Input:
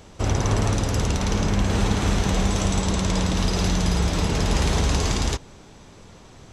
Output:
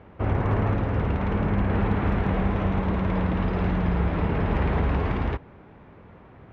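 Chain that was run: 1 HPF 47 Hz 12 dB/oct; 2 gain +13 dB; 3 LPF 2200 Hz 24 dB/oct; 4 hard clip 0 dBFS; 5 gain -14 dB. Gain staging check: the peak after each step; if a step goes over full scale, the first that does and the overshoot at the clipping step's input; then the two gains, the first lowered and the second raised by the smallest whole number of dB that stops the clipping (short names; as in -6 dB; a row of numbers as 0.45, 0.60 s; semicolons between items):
-9.0, +4.0, +3.0, 0.0, -14.0 dBFS; step 2, 3.0 dB; step 2 +10 dB, step 5 -11 dB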